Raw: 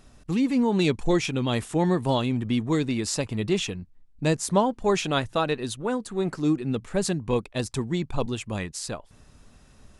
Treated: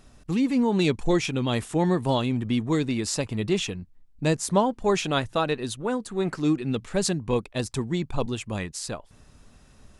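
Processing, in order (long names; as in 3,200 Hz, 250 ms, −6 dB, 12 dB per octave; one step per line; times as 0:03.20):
0:06.19–0:07.08: parametric band 1,800 Hz → 5,000 Hz +4.5 dB 1.8 octaves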